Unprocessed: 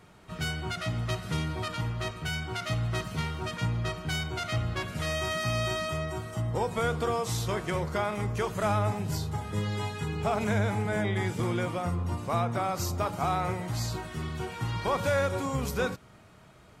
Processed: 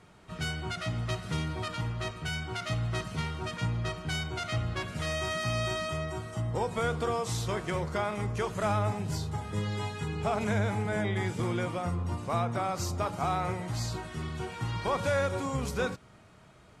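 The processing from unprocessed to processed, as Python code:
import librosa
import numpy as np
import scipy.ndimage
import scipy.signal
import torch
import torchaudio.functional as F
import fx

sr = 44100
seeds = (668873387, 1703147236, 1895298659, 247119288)

y = scipy.signal.sosfilt(scipy.signal.butter(4, 11000.0, 'lowpass', fs=sr, output='sos'), x)
y = y * 10.0 ** (-1.5 / 20.0)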